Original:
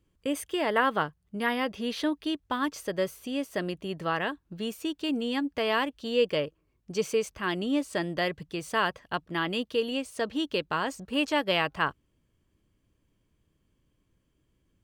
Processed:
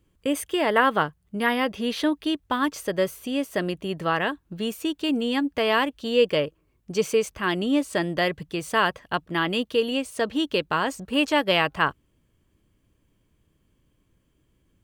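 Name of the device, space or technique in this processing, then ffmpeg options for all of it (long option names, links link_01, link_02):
exciter from parts: -filter_complex "[0:a]asplit=2[link_01][link_02];[link_02]highpass=frequency=4700:width=0.5412,highpass=frequency=4700:width=1.3066,asoftclip=type=tanh:threshold=-39dB,volume=-11dB[link_03];[link_01][link_03]amix=inputs=2:normalize=0,volume=5dB"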